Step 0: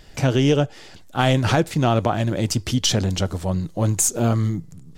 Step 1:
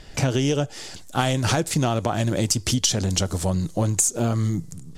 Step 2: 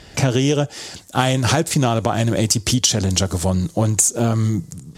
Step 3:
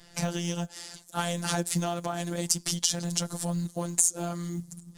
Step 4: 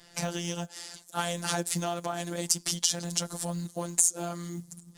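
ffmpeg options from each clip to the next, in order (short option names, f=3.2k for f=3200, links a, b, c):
-filter_complex "[0:a]acrossover=split=5600[a][b];[b]dynaudnorm=f=110:g=5:m=12dB[c];[a][c]amix=inputs=2:normalize=0,lowpass=11k,acompressor=threshold=-21dB:ratio=6,volume=3dB"
-af "highpass=56,volume=4.5dB"
-af "afftfilt=real='hypot(re,im)*cos(PI*b)':imag='0':win_size=1024:overlap=0.75,equalizer=f=100:t=o:w=0.67:g=-6,equalizer=f=400:t=o:w=0.67:g=-6,equalizer=f=2.5k:t=o:w=0.67:g=-3,equalizer=f=10k:t=o:w=0.67:g=6,acrusher=bits=8:mode=log:mix=0:aa=0.000001,volume=-7dB"
-af "lowshelf=f=130:g=-11.5"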